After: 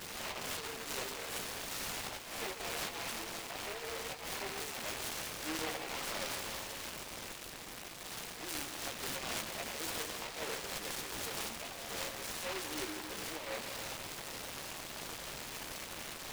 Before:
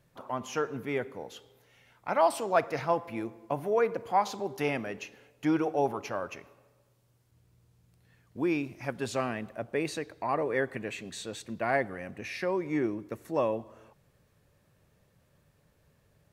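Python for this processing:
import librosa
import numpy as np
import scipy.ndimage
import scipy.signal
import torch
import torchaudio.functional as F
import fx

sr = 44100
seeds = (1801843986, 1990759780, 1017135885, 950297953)

y = x + 0.5 * 10.0 ** (-34.0 / 20.0) * np.sign(x)
y = scipy.signal.sosfilt(scipy.signal.butter(2, 930.0, 'highpass', fs=sr, output='sos'), y)
y = fx.over_compress(y, sr, threshold_db=-37.0, ratio=-0.5)
y = fx.transient(y, sr, attack_db=-6, sustain_db=3)
y = fx.doubler(y, sr, ms=13.0, db=-2.0)
y = fx.echo_split(y, sr, split_hz=1400.0, low_ms=146, high_ms=551, feedback_pct=52, wet_db=-9)
y = np.repeat(y[::6], 6)[:len(y)]
y = fx.noise_mod_delay(y, sr, seeds[0], noise_hz=1500.0, depth_ms=0.23)
y = y * 10.0 ** (-4.0 / 20.0)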